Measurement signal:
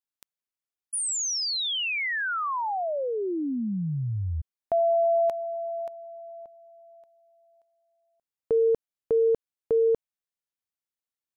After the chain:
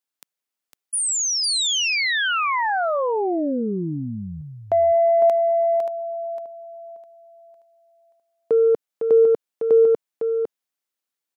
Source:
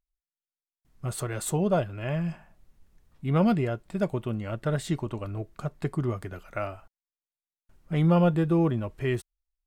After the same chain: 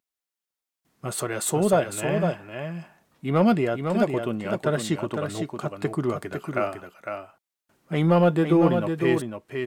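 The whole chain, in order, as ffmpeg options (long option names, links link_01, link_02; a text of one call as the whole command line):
ffmpeg -i in.wav -af "highpass=210,asoftclip=type=tanh:threshold=-13dB,aecho=1:1:505:0.501,volume=6dB" out.wav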